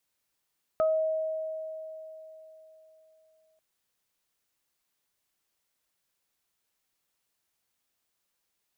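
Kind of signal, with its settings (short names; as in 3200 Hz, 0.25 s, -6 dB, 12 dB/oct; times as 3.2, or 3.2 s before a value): additive tone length 2.79 s, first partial 634 Hz, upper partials -8 dB, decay 3.71 s, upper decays 0.27 s, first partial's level -21 dB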